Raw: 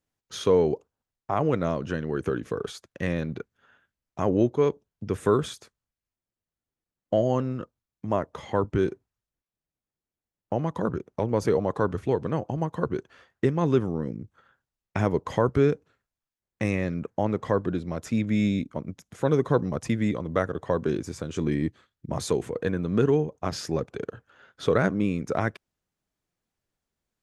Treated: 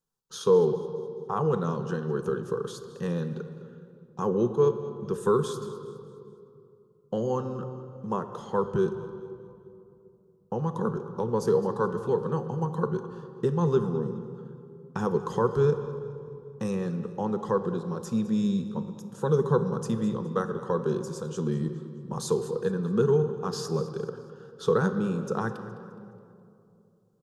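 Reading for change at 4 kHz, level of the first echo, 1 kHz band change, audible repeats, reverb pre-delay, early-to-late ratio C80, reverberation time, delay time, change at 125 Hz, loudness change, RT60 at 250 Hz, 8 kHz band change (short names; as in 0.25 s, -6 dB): -3.5 dB, -17.0 dB, -1.0 dB, 3, 4 ms, 10.0 dB, 2.7 s, 0.209 s, -1.5 dB, -1.5 dB, 3.3 s, -0.5 dB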